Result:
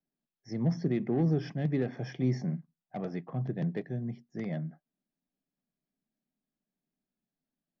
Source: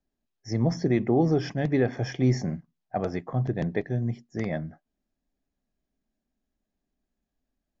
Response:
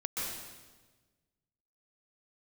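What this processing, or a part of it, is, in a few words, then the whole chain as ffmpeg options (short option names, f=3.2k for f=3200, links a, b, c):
one-band saturation: -filter_complex "[0:a]lowpass=f=5.4k:w=0.5412,lowpass=f=5.4k:w=1.3066,lowshelf=f=110:t=q:w=3:g=-10.5,acrossover=split=470|2600[a][b][c];[b]asoftclip=type=tanh:threshold=-29dB[d];[a][d][c]amix=inputs=3:normalize=0,volume=-8dB"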